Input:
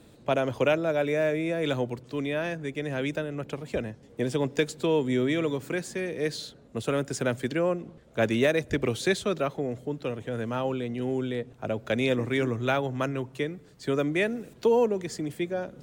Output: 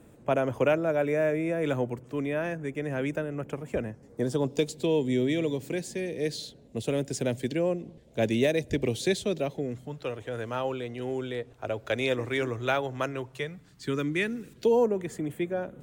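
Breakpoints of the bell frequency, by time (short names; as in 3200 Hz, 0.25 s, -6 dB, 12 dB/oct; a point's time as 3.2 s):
bell -14.5 dB 0.75 oct
3.9 s 4100 Hz
4.79 s 1300 Hz
9.53 s 1300 Hz
10.08 s 190 Hz
13.22 s 190 Hz
13.88 s 650 Hz
14.54 s 650 Hz
14.96 s 5000 Hz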